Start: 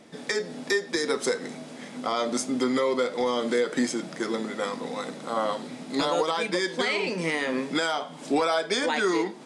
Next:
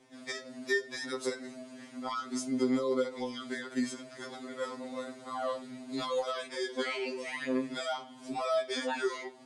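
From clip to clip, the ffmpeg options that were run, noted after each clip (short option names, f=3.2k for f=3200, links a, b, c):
-af "afftfilt=real='re*2.45*eq(mod(b,6),0)':imag='im*2.45*eq(mod(b,6),0)':win_size=2048:overlap=0.75,volume=-7dB"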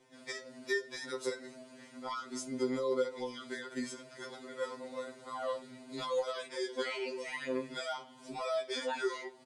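-af "aecho=1:1:5.7:0.43,volume=-3.5dB"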